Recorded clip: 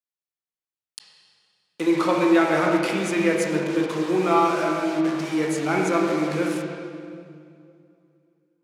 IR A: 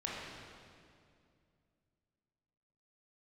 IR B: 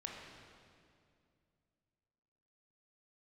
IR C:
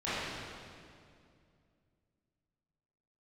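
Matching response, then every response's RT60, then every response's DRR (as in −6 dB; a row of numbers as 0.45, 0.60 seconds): B; 2.3, 2.3, 2.3 seconds; −5.5, −1.5, −14.5 decibels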